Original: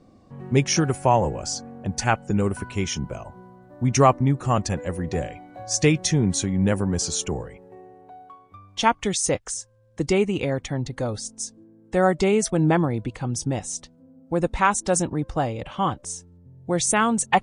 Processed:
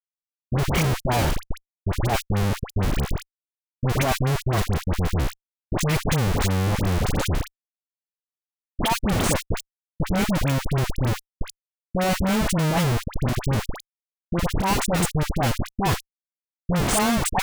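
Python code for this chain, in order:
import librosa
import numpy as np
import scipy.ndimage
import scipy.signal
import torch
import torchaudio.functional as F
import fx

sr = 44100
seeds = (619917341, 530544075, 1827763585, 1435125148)

y = fx.fixed_phaser(x, sr, hz=1400.0, stages=6)
y = fx.schmitt(y, sr, flips_db=-26.5)
y = fx.dispersion(y, sr, late='highs', ms=69.0, hz=1200.0)
y = y * 10.0 ** (7.0 / 20.0)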